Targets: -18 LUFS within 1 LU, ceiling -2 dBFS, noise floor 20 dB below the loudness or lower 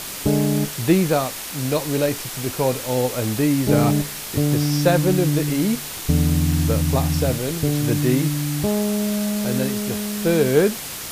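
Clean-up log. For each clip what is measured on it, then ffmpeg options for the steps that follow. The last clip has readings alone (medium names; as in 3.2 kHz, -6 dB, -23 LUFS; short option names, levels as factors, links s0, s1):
noise floor -32 dBFS; noise floor target -41 dBFS; loudness -20.5 LUFS; peak level -3.5 dBFS; loudness target -18.0 LUFS
-> -af "afftdn=nr=9:nf=-32"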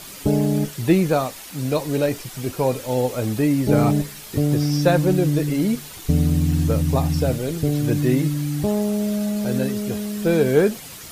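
noise floor -38 dBFS; noise floor target -41 dBFS
-> -af "afftdn=nr=6:nf=-38"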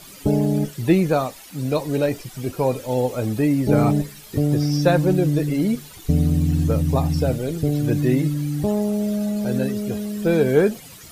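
noise floor -43 dBFS; loudness -21.0 LUFS; peak level -4.0 dBFS; loudness target -18.0 LUFS
-> -af "volume=1.41,alimiter=limit=0.794:level=0:latency=1"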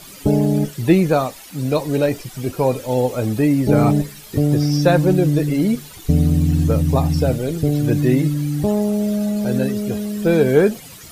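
loudness -18.0 LUFS; peak level -2.0 dBFS; noise floor -40 dBFS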